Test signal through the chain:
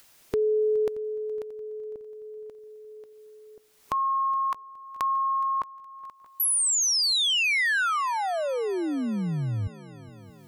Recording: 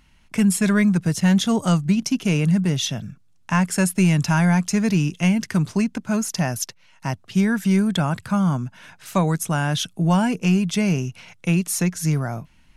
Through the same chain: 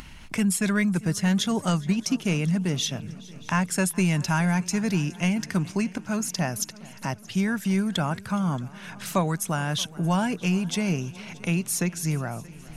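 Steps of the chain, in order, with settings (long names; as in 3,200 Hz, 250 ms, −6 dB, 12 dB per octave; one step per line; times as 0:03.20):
upward compression, threshold −25 dBFS
echo machine with several playback heads 209 ms, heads second and third, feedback 54%, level −21.5 dB
harmonic and percussive parts rebalanced harmonic −4 dB
level −2 dB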